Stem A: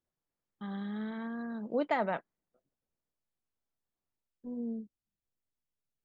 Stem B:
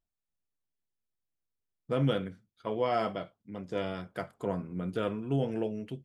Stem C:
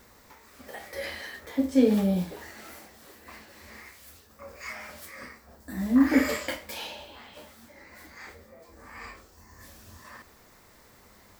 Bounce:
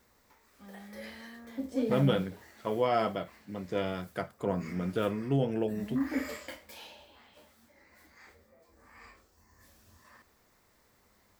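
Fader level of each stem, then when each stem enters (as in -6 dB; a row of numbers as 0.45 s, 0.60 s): -11.5 dB, +1.5 dB, -11.0 dB; 0.00 s, 0.00 s, 0.00 s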